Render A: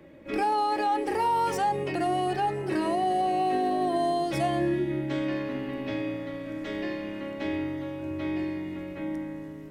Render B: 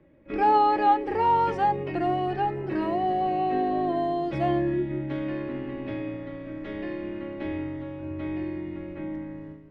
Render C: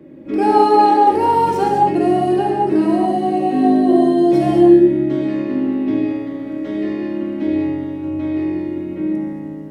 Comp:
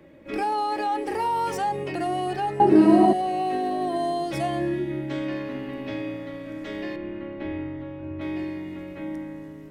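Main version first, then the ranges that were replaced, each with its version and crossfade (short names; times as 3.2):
A
2.6–3.13 from C
6.96–8.21 from B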